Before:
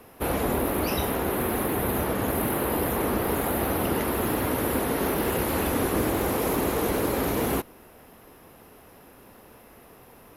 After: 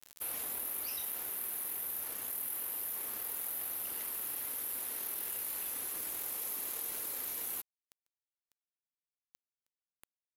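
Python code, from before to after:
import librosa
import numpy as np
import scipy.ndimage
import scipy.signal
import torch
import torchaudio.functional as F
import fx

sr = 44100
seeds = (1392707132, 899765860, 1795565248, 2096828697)

y = F.preemphasis(torch.from_numpy(x), 0.97).numpy()
y = fx.rider(y, sr, range_db=10, speed_s=2.0)
y = np.sign(y) * np.maximum(np.abs(y) - 10.0 ** (-44.0 / 20.0), 0.0)
y = fx.env_flatten(y, sr, amount_pct=70)
y = y * librosa.db_to_amplitude(-7.0)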